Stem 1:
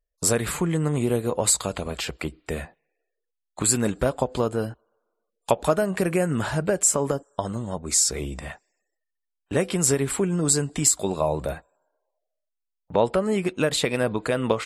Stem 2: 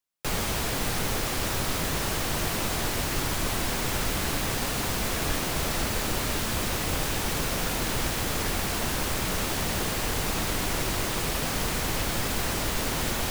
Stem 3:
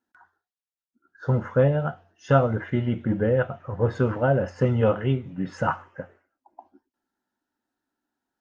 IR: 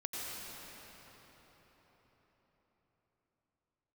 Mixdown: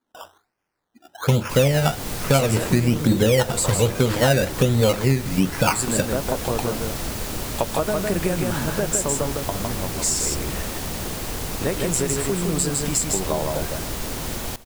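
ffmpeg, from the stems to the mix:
-filter_complex "[0:a]adelay=2100,volume=-1dB,asplit=2[a][b];[b]volume=-3.5dB[c];[1:a]equalizer=f=1.9k:w=0.47:g=-5,adelay=1250,volume=0.5dB,asplit=2[d][e];[e]volume=-18dB[f];[2:a]acrusher=samples=16:mix=1:aa=0.000001:lfo=1:lforange=9.6:lforate=1.2,dynaudnorm=f=100:g=3:m=14dB,volume=2.5dB[g];[c][f]amix=inputs=2:normalize=0,aecho=0:1:158:1[h];[a][d][g][h]amix=inputs=4:normalize=0,acompressor=threshold=-18dB:ratio=2.5"

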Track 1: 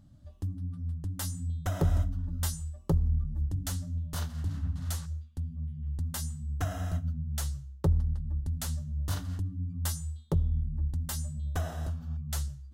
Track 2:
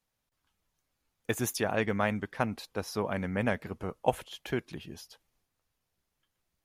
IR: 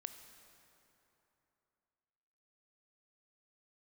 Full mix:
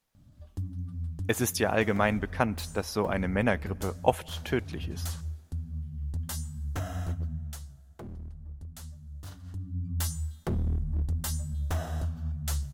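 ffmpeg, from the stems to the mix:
-filter_complex "[0:a]aeval=exprs='0.0562*(abs(mod(val(0)/0.0562+3,4)-2)-1)':c=same,adelay=150,volume=10dB,afade=t=out:st=7.35:d=0.24:silence=0.316228,afade=t=in:st=9.44:d=0.43:silence=0.237137,asplit=2[a][b];[b]volume=-6.5dB[c];[1:a]volume=2.5dB,asplit=3[d][e][f];[e]volume=-14dB[g];[f]apad=whole_len=568195[h];[a][h]sidechaincompress=threshold=-39dB:ratio=8:attack=16:release=291[i];[2:a]atrim=start_sample=2205[j];[c][g]amix=inputs=2:normalize=0[k];[k][j]afir=irnorm=-1:irlink=0[l];[i][d][l]amix=inputs=3:normalize=0"

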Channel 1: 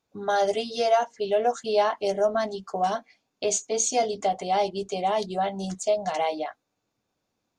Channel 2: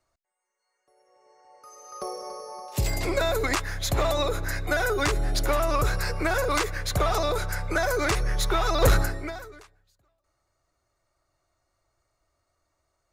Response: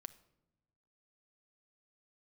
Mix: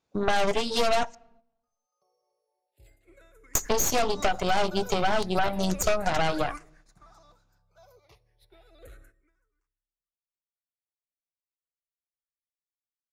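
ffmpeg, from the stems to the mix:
-filter_complex "[0:a]lowpass=8.8k,aeval=exprs='0.282*(cos(1*acos(clip(val(0)/0.282,-1,1)))-cos(1*PI/2))+0.0398*(cos(5*acos(clip(val(0)/0.282,-1,1)))-cos(5*PI/2))+0.0794*(cos(8*acos(clip(val(0)/0.282,-1,1)))-cos(8*PI/2))':c=same,volume=2dB,asplit=3[a][b][c];[a]atrim=end=1.15,asetpts=PTS-STARTPTS,afade=t=out:st=1.146:d=0.004:c=hsin[d];[b]atrim=start=1.15:end=3.55,asetpts=PTS-STARTPTS,volume=0[e];[c]atrim=start=3.55,asetpts=PTS-STARTPTS,afade=t=in:d=0.004:c=hsin[f];[d][e][f]concat=n=3:v=0:a=1,asplit=3[g][h][i];[h]volume=-8dB[j];[1:a]asplit=2[k][l];[l]afreqshift=-0.34[m];[k][m]amix=inputs=2:normalize=1,volume=-9dB,asplit=2[n][o];[o]volume=-16dB[p];[i]apad=whole_len=578693[q];[n][q]sidechaingate=range=-33dB:threshold=-31dB:ratio=16:detection=peak[r];[2:a]atrim=start_sample=2205[s];[j][p]amix=inputs=2:normalize=0[t];[t][s]afir=irnorm=-1:irlink=0[u];[g][r][u]amix=inputs=3:normalize=0,agate=range=-9dB:threshold=-56dB:ratio=16:detection=peak,acompressor=threshold=-22dB:ratio=3"

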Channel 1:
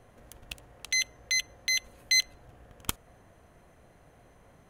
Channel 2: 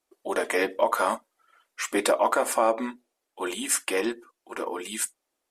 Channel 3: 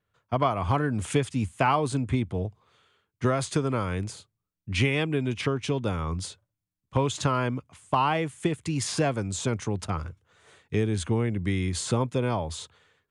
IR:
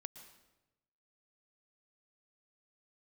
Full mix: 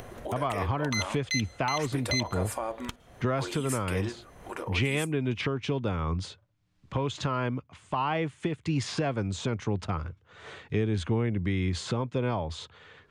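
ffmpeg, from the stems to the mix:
-filter_complex "[0:a]acrossover=split=6500[a][b];[b]acompressor=threshold=-46dB:ratio=4:attack=1:release=60[c];[a][c]amix=inputs=2:normalize=0,volume=-0.5dB,asplit=2[d][e];[e]volume=-13dB[f];[1:a]acompressor=threshold=-34dB:ratio=2,volume=-2.5dB[g];[2:a]lowpass=4.3k,acontrast=32,volume=-4.5dB[h];[3:a]atrim=start_sample=2205[i];[f][i]afir=irnorm=-1:irlink=0[j];[d][g][h][j]amix=inputs=4:normalize=0,acompressor=mode=upward:threshold=-33dB:ratio=2.5,alimiter=limit=-18dB:level=0:latency=1:release=247"

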